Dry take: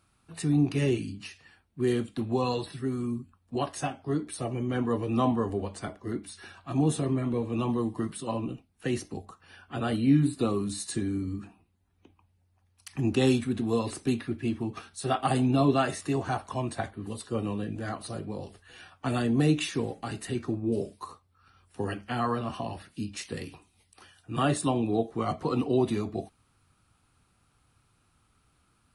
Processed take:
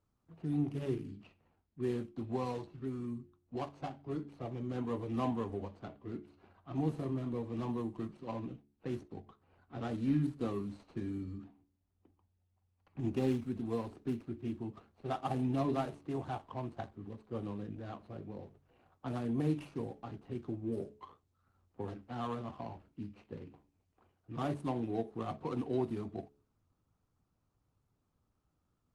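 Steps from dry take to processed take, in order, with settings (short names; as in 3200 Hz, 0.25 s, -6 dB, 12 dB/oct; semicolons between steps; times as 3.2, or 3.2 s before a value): median filter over 25 samples; low-pass opened by the level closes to 2300 Hz, open at -23.5 dBFS; dynamic EQ 910 Hz, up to +3 dB, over -45 dBFS, Q 3.6; de-hum 71.1 Hz, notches 6; gain -8.5 dB; Opus 32 kbps 48000 Hz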